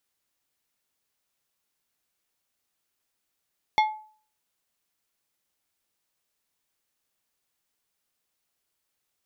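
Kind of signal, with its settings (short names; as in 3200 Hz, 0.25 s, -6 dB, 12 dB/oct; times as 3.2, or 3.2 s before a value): glass hit plate, lowest mode 861 Hz, decay 0.46 s, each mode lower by 6 dB, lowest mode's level -15 dB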